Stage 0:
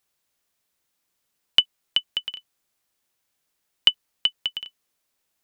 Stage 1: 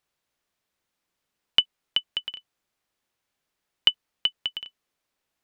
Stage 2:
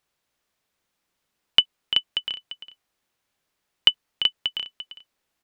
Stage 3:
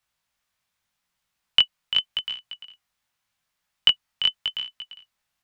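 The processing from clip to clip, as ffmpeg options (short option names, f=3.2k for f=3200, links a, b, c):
-af "highshelf=f=5.7k:g=-11"
-af "aecho=1:1:344:0.282,volume=3dB"
-filter_complex "[0:a]flanger=delay=16.5:depth=6.1:speed=0.84,acrossover=split=240|590|2300[a][b][c][d];[b]acrusher=bits=6:dc=4:mix=0:aa=0.000001[e];[a][e][c][d]amix=inputs=4:normalize=0,volume=2.5dB"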